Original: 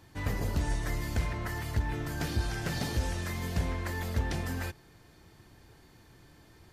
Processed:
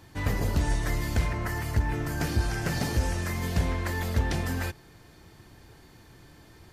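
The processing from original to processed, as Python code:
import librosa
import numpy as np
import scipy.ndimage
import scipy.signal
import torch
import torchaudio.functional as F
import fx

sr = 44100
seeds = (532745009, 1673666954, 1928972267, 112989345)

y = fx.peak_eq(x, sr, hz=3600.0, db=-5.5, octaves=0.52, at=(1.28, 3.43))
y = F.gain(torch.from_numpy(y), 4.5).numpy()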